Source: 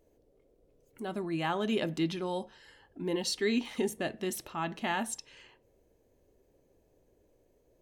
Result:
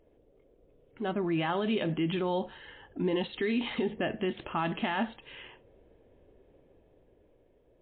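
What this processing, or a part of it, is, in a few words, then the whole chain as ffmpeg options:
low-bitrate web radio: -af "dynaudnorm=f=210:g=13:m=4.5dB,alimiter=level_in=1dB:limit=-24dB:level=0:latency=1:release=52,volume=-1dB,volume=4dB" -ar 8000 -c:a libmp3lame -b:a 24k

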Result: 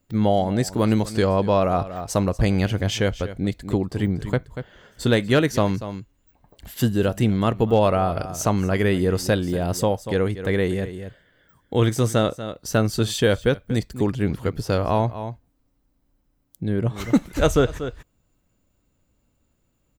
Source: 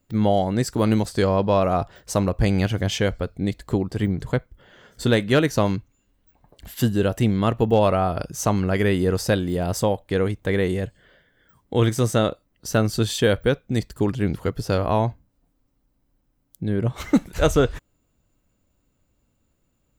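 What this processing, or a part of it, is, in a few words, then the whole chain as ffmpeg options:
ducked delay: -filter_complex "[0:a]asplit=3[a][b][c];[b]adelay=238,volume=-9dB[d];[c]apad=whole_len=891777[e];[d][e]sidechaincompress=threshold=-26dB:ratio=8:attack=7.4:release=250[f];[a][f]amix=inputs=2:normalize=0"

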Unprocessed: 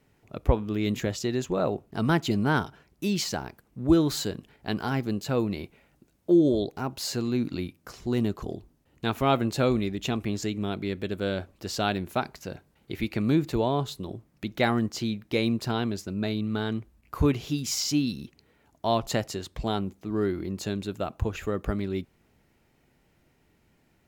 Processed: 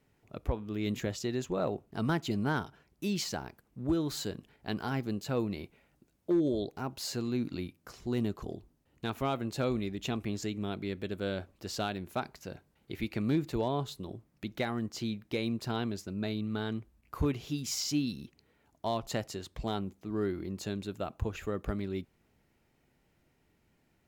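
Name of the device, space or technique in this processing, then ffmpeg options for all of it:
limiter into clipper: -af "alimiter=limit=-14.5dB:level=0:latency=1:release=391,asoftclip=type=hard:threshold=-16dB,volume=-5.5dB"

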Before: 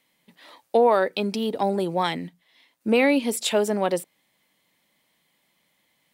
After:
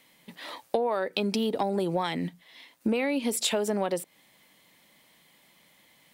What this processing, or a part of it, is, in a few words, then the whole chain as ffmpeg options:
serial compression, leveller first: -af "acompressor=threshold=-23dB:ratio=2,acompressor=threshold=-33dB:ratio=5,volume=8dB"

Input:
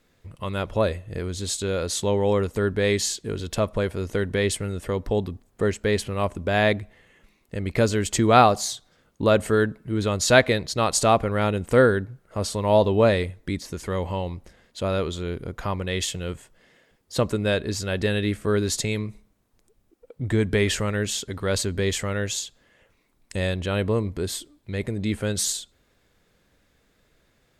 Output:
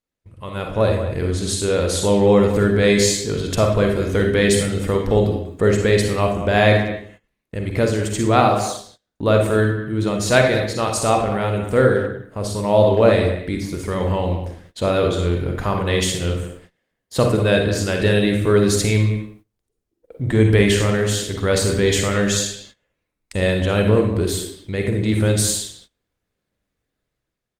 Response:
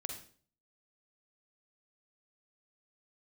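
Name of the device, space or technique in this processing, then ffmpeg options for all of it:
speakerphone in a meeting room: -filter_complex "[1:a]atrim=start_sample=2205[a];[0:a][a]afir=irnorm=-1:irlink=0,asplit=2[b][c];[c]adelay=190,highpass=300,lowpass=3.4k,asoftclip=type=hard:threshold=-11.5dB,volume=-11dB[d];[b][d]amix=inputs=2:normalize=0,dynaudnorm=f=230:g=7:m=9dB,agate=range=-20dB:threshold=-43dB:ratio=16:detection=peak" -ar 48000 -c:a libopus -b:a 32k

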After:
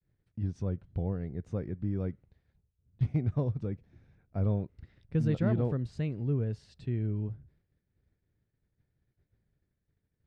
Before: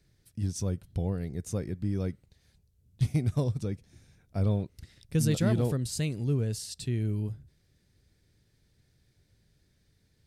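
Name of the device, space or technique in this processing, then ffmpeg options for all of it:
hearing-loss simulation: -af "lowpass=1.8k,agate=range=-33dB:threshold=-60dB:ratio=3:detection=peak,volume=-2dB"

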